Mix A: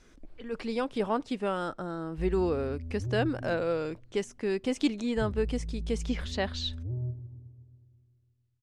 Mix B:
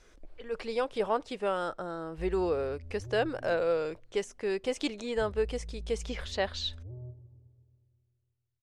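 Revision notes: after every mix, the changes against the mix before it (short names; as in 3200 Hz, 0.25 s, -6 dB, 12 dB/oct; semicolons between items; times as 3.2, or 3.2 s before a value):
background -4.0 dB; master: add ten-band EQ 125 Hz -5 dB, 250 Hz -9 dB, 500 Hz +4 dB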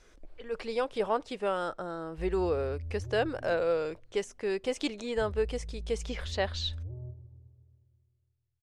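background: add bell 81 Hz +8 dB 0.43 oct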